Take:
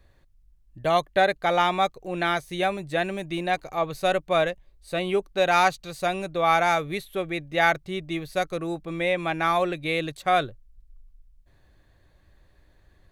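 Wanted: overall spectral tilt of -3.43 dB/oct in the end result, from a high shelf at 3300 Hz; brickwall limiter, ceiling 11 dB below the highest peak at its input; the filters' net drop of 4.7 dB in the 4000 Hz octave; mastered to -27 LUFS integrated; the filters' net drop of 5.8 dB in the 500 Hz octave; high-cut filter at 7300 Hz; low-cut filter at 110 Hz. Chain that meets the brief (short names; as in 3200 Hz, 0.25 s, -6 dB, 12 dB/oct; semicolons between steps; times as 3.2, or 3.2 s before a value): HPF 110 Hz; LPF 7300 Hz; bell 500 Hz -8 dB; high shelf 3300 Hz +4.5 dB; bell 4000 Hz -8 dB; gain +4.5 dB; limiter -15 dBFS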